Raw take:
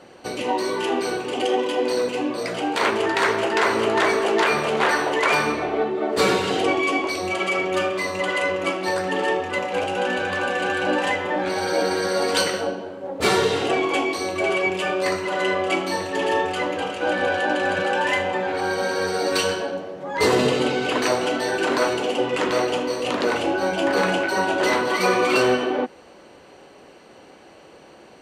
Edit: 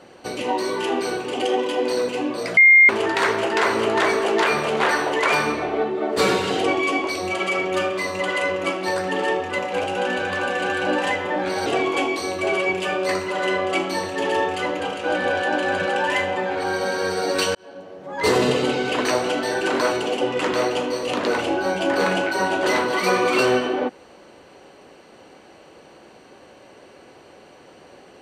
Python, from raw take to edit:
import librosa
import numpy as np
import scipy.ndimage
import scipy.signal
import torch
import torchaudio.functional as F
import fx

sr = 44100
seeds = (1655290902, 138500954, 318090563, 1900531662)

y = fx.edit(x, sr, fx.bleep(start_s=2.57, length_s=0.32, hz=2120.0, db=-7.5),
    fx.cut(start_s=11.66, length_s=1.97),
    fx.fade_in_span(start_s=19.52, length_s=0.73), tone=tone)